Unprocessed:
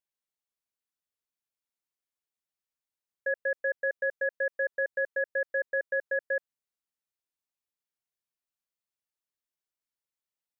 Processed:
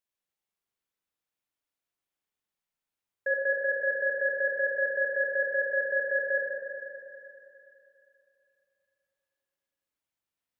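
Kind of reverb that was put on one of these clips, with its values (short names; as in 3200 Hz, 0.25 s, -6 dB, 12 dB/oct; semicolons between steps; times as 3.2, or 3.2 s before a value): spring tank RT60 3 s, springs 40/50 ms, chirp 65 ms, DRR -3 dB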